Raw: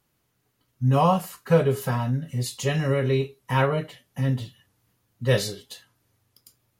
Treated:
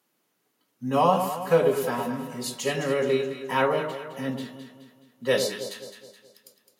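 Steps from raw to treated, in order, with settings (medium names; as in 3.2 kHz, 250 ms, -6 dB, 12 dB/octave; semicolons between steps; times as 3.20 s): high-pass 210 Hz 24 dB/octave; on a send: echo whose repeats swap between lows and highs 106 ms, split 990 Hz, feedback 67%, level -6 dB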